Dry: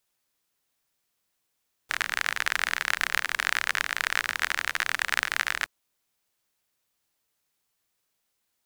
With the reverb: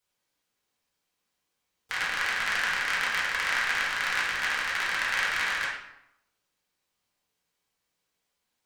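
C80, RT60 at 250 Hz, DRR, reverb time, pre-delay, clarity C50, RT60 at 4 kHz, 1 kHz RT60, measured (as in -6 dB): 5.5 dB, 0.90 s, -7.5 dB, 0.80 s, 3 ms, 2.0 dB, 0.60 s, 0.80 s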